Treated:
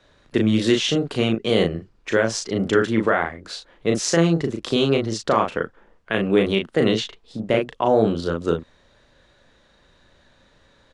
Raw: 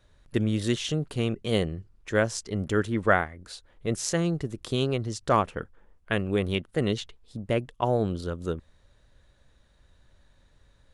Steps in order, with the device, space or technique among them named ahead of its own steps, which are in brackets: DJ mixer with the lows and highs turned down (three-band isolator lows -13 dB, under 170 Hz, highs -17 dB, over 7000 Hz; limiter -16.5 dBFS, peak gain reduction 10 dB); doubler 36 ms -4 dB; gain +9 dB

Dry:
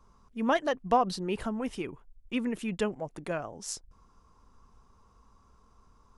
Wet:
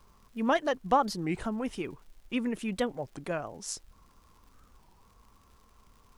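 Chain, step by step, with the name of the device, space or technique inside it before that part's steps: warped LP (record warp 33 1/3 rpm, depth 250 cents; crackle 130/s -51 dBFS; pink noise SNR 37 dB)

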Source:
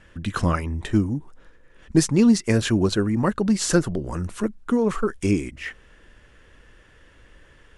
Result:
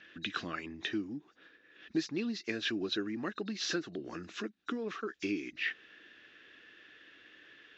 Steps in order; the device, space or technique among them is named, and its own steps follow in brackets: hearing aid with frequency lowering (nonlinear frequency compression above 3700 Hz 1.5:1; compressor 2.5:1, threshold -29 dBFS, peak gain reduction 12 dB; speaker cabinet 300–5900 Hz, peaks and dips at 310 Hz +6 dB, 540 Hz -7 dB, 940 Hz -10 dB, 1700 Hz +6 dB, 2600 Hz +7 dB, 3700 Hz +10 dB); gain -5 dB

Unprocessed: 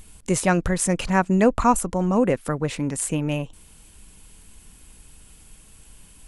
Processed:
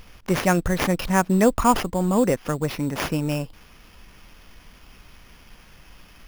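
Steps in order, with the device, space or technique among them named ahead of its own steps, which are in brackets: early companding sampler (sample-rate reducer 8000 Hz, jitter 0%; companded quantiser 8-bit)

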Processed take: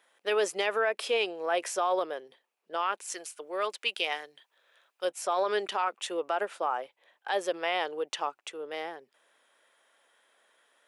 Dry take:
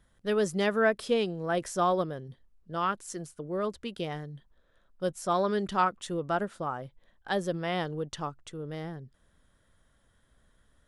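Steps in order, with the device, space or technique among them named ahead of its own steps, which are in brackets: laptop speaker (HPF 400 Hz 24 dB/oct; bell 840 Hz +5 dB 0.56 oct; bell 2500 Hz +10 dB 0.6 oct; limiter -21.5 dBFS, peak gain reduction 11.5 dB); 3.12–5.05 tilt shelf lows -5.5 dB, about 1200 Hz; gain +3 dB

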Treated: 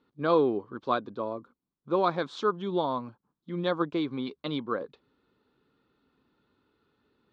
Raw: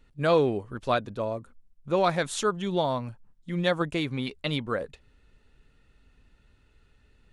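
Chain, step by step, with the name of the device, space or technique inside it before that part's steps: kitchen radio (speaker cabinet 200–4200 Hz, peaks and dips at 630 Hz -5 dB, 1100 Hz +6 dB, 1900 Hz -10 dB, 2700 Hz -10 dB); bell 320 Hz +4.5 dB 0.79 oct; gain -2 dB

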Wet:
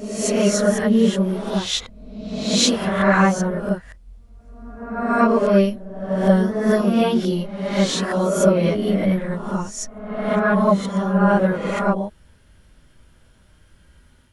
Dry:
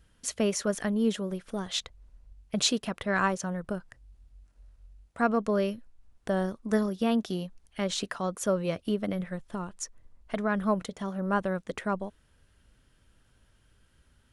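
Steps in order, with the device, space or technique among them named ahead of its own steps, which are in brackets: reverse reverb (reverse; reverb RT60 1.1 s, pre-delay 5 ms, DRR -7 dB; reverse); gain +2.5 dB

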